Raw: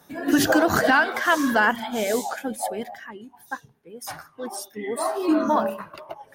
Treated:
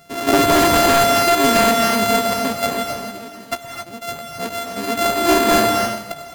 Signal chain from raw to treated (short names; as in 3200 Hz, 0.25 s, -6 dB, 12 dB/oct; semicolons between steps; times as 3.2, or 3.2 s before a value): sample sorter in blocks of 64 samples; non-linear reverb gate 0.3 s rising, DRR 2.5 dB; wavefolder -14.5 dBFS; gain +6.5 dB